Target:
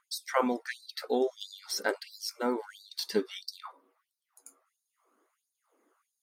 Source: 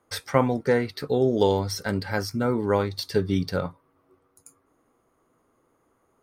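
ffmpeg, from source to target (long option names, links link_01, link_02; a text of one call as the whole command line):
ffmpeg -i in.wav -af "aphaser=in_gain=1:out_gain=1:delay=1.6:decay=0.4:speed=0.54:type=triangular,afftfilt=real='re*gte(b*sr/1024,200*pow(3800/200,0.5+0.5*sin(2*PI*1.5*pts/sr)))':imag='im*gte(b*sr/1024,200*pow(3800/200,0.5+0.5*sin(2*PI*1.5*pts/sr)))':win_size=1024:overlap=0.75,volume=-2.5dB" out.wav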